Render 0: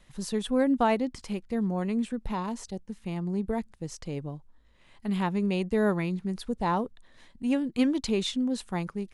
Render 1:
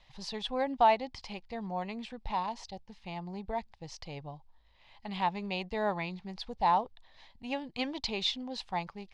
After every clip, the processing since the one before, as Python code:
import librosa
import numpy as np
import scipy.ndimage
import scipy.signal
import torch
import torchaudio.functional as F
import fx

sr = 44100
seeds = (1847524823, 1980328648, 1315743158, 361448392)

y = fx.curve_eq(x, sr, hz=(100.0, 240.0, 450.0, 820.0, 1400.0, 2100.0, 4800.0, 9100.0), db=(0, -10, -6, 10, -4, 4, 7, -17))
y = F.gain(torch.from_numpy(y), -4.0).numpy()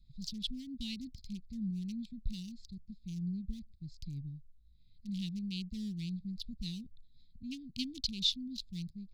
y = fx.wiener(x, sr, points=15)
y = scipy.signal.sosfilt(scipy.signal.cheby2(4, 60, [540.0, 1500.0], 'bandstop', fs=sr, output='sos'), y)
y = fx.am_noise(y, sr, seeds[0], hz=5.7, depth_pct=55)
y = F.gain(torch.from_numpy(y), 7.0).numpy()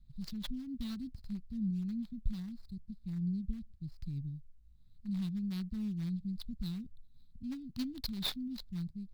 y = scipy.signal.medfilt(x, 15)
y = F.gain(torch.from_numpy(y), 2.5).numpy()